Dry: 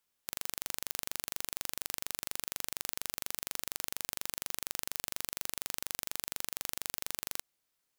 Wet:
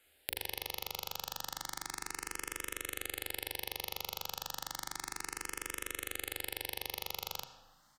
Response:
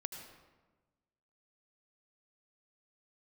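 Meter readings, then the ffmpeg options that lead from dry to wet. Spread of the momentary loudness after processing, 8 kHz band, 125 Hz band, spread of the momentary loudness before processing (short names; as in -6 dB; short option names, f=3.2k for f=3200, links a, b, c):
2 LU, -3.5 dB, +2.0 dB, 0 LU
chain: -filter_complex "[0:a]aresample=32000,aresample=44100,acompressor=threshold=-46dB:ratio=12,bandreject=f=60:t=h:w=6,bandreject=f=120:t=h:w=6,bandreject=f=180:t=h:w=6,bandreject=f=240:t=h:w=6,bandreject=f=300:t=h:w=6,bandreject=f=360:t=h:w=6,bandreject=f=420:t=h:w=6,bandreject=f=480:t=h:w=6,bandreject=f=540:t=h:w=6,asplit=2[a][b];[b]adelay=39,volume=-3.5dB[c];[a][c]amix=inputs=2:normalize=0,asplit=2[d][e];[1:a]atrim=start_sample=2205,lowpass=4.4k[f];[e][f]afir=irnorm=-1:irlink=0,volume=2dB[g];[d][g]amix=inputs=2:normalize=0,asplit=2[h][i];[i]afreqshift=0.32[j];[h][j]amix=inputs=2:normalize=1,volume=13.5dB"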